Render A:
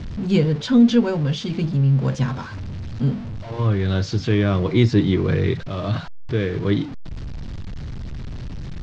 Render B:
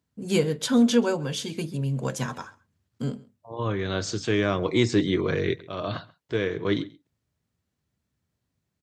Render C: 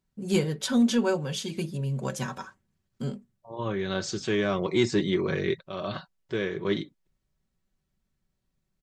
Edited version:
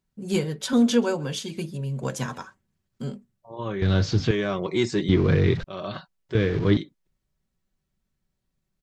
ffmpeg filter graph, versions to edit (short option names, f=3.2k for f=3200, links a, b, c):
-filter_complex "[1:a]asplit=2[a][b];[0:a]asplit=3[c][d][e];[2:a]asplit=6[f][g][h][i][j][k];[f]atrim=end=0.732[l];[a]atrim=start=0.728:end=1.392[m];[g]atrim=start=1.388:end=2.032[n];[b]atrim=start=2.028:end=2.432[o];[h]atrim=start=2.428:end=3.822[p];[c]atrim=start=3.818:end=4.312[q];[i]atrim=start=4.308:end=5.092[r];[d]atrim=start=5.088:end=5.642[s];[j]atrim=start=5.638:end=6.352[t];[e]atrim=start=6.348:end=6.772[u];[k]atrim=start=6.768[v];[l][m]acrossfade=d=0.004:c1=hsin:c2=hsin[w];[w][n]acrossfade=d=0.004:c1=hsin:c2=hsin[x];[x][o]acrossfade=d=0.004:c1=hsin:c2=hsin[y];[y][p]acrossfade=d=0.004:c1=hsin:c2=hsin[z];[z][q]acrossfade=d=0.004:c1=hsin:c2=hsin[aa];[aa][r]acrossfade=d=0.004:c1=hsin:c2=hsin[ab];[ab][s]acrossfade=d=0.004:c1=hsin:c2=hsin[ac];[ac][t]acrossfade=d=0.004:c1=hsin:c2=hsin[ad];[ad][u]acrossfade=d=0.004:c1=hsin:c2=hsin[ae];[ae][v]acrossfade=d=0.004:c1=hsin:c2=hsin"